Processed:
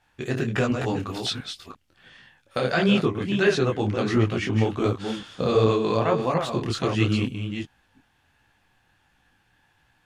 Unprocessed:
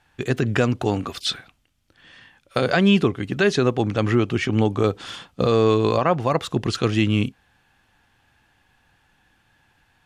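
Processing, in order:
delay that plays each chunk backwards 347 ms, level −7 dB
micro pitch shift up and down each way 49 cents

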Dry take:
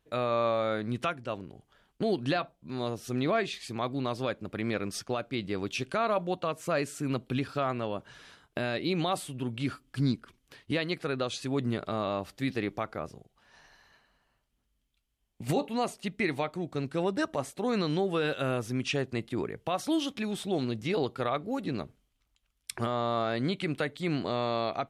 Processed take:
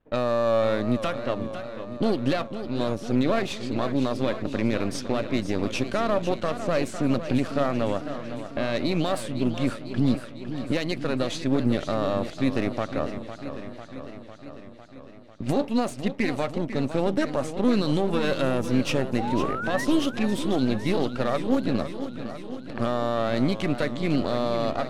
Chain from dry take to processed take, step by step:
gain on one half-wave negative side −12 dB
sound drawn into the spectrogram rise, 0:19.18–0:19.85, 740–2,000 Hz −39 dBFS
brickwall limiter −22.5 dBFS, peak gain reduction 6.5 dB
low-pass that shuts in the quiet parts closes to 1,900 Hz, open at −30.5 dBFS
hollow resonant body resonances 250/560 Hz, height 7 dB, ringing for 30 ms
feedback echo with a swinging delay time 501 ms, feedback 68%, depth 134 cents, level −11 dB
level +7 dB

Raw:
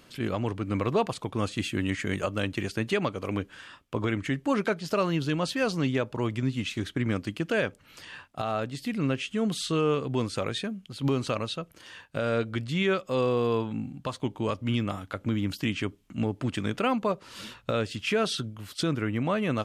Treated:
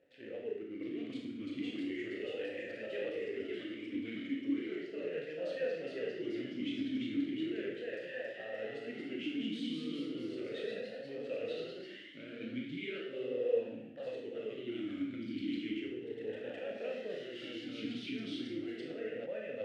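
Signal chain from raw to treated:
reversed playback
downward compressor 10 to 1, threshold −34 dBFS, peak gain reduction 14 dB
reversed playback
flanger 0.43 Hz, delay 2 ms, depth 6.2 ms, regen −62%
slack as between gear wheels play −51.5 dBFS
four-comb reverb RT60 0.75 s, combs from 25 ms, DRR −0.5 dB
delay with pitch and tempo change per echo 721 ms, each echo +1 semitone, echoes 3
formant filter swept between two vowels e-i 0.36 Hz
level +8.5 dB

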